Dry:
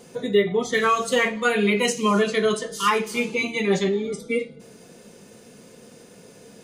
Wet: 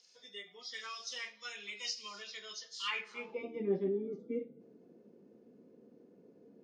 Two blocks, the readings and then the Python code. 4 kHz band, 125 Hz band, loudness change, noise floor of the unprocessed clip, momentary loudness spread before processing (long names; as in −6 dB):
−12.0 dB, −19.5 dB, −18.0 dB, −49 dBFS, 6 LU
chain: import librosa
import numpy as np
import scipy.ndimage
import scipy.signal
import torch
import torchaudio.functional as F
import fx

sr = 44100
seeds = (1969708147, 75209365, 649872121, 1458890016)

y = fx.freq_compress(x, sr, knee_hz=3200.0, ratio=1.5)
y = fx.filter_sweep_bandpass(y, sr, from_hz=5000.0, to_hz=310.0, start_s=2.74, end_s=3.61, q=2.3)
y = y * 10.0 ** (-6.5 / 20.0)